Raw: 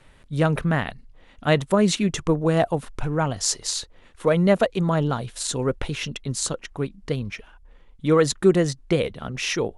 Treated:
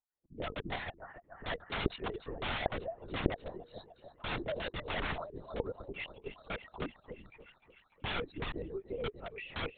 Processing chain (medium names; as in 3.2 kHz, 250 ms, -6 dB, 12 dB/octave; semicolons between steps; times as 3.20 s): spectral contrast enhancement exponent 2.1; gate with hold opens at -45 dBFS; resonant low shelf 240 Hz -6.5 dB, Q 3; peak limiter -17 dBFS, peak gain reduction 12 dB; wah-wah 2.7 Hz 320–1400 Hz, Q 2.9; on a send: thinning echo 293 ms, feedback 82%, high-pass 580 Hz, level -12 dB; on the sum: integer overflow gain 31.5 dB; LPC vocoder at 8 kHz whisper; trim +2 dB